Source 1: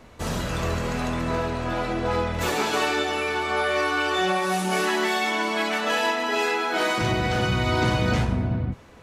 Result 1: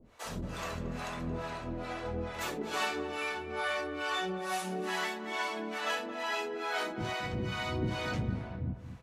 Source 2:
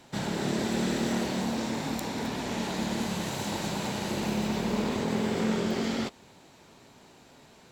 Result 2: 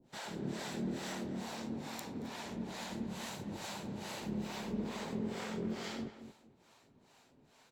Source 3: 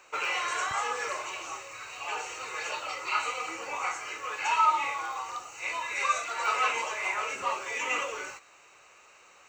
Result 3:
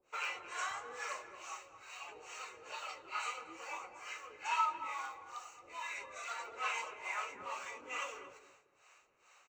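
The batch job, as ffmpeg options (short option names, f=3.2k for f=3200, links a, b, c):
-filter_complex "[0:a]bandreject=f=60:t=h:w=6,bandreject=f=120:t=h:w=6,acrossover=split=510[a][b];[a]aeval=exprs='val(0)*(1-1/2+1/2*cos(2*PI*2.3*n/s))':c=same[c];[b]aeval=exprs='val(0)*(1-1/2-1/2*cos(2*PI*2.3*n/s))':c=same[d];[c][d]amix=inputs=2:normalize=0,asplit=2[e][f];[f]adelay=225,lowpass=f=1.5k:p=1,volume=-10dB,asplit=2[g][h];[h]adelay=225,lowpass=f=1.5k:p=1,volume=0.23,asplit=2[i][j];[j]adelay=225,lowpass=f=1.5k:p=1,volume=0.23[k];[g][i][k]amix=inputs=3:normalize=0[l];[e][l]amix=inputs=2:normalize=0,volume=-6.5dB"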